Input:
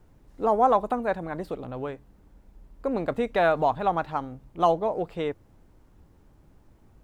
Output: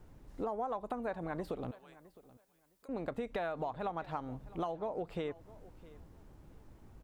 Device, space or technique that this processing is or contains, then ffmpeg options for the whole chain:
serial compression, peaks first: -filter_complex "[0:a]acompressor=threshold=-31dB:ratio=4,acompressor=threshold=-37dB:ratio=2,asettb=1/sr,asplit=3[link_01][link_02][link_03];[link_01]atrim=end=1.714[link_04];[link_02]atrim=start=1.71:end=2.89,asetpts=PTS-STARTPTS,afade=type=in:duration=0.004:curve=qsin,afade=type=out:start_time=1.176:duration=0.004:curve=qsin,aderivative[link_05];[link_03]atrim=start=2.886[link_06];[link_04][link_05]acrossfade=duration=0.004:curve1=hsin:curve2=qsin[link_07];[link_07][link_06]acrossfade=duration=0.004:curve1=qsin:curve2=hsin,aecho=1:1:661|1322:0.1|0.018"

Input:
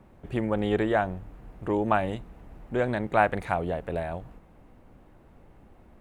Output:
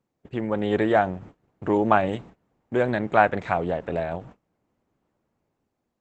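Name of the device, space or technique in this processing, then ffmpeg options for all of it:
video call: -af "highpass=110,dynaudnorm=framelen=210:gausssize=7:maxgain=6dB,agate=range=-23dB:threshold=-42dB:ratio=16:detection=peak" -ar 48000 -c:a libopus -b:a 12k

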